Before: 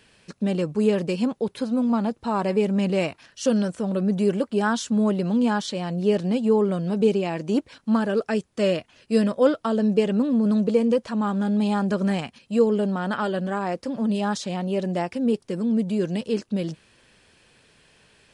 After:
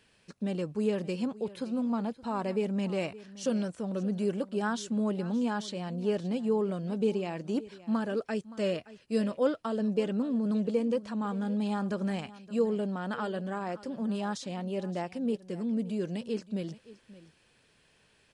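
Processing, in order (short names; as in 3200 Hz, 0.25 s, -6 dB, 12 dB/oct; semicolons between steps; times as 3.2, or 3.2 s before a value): echo 0.57 s -18 dB; gain -8.5 dB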